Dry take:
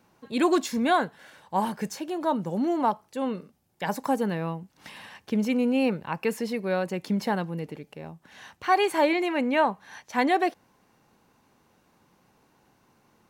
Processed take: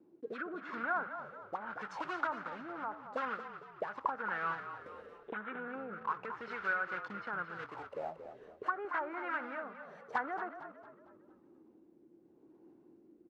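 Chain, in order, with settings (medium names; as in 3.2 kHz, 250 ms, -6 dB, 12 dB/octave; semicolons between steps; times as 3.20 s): block-companded coder 3-bit; low-pass that closes with the level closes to 680 Hz, closed at -18.5 dBFS; 5.18–5.68 s: Chebyshev low-pass 3.9 kHz, order 10; peak limiter -22.5 dBFS, peak gain reduction 9.5 dB; auto-wah 320–1400 Hz, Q 8.6, up, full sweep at -29.5 dBFS; rotary cabinet horn 0.85 Hz; frequency-shifting echo 227 ms, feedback 43%, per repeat -41 Hz, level -10 dB; trim +15 dB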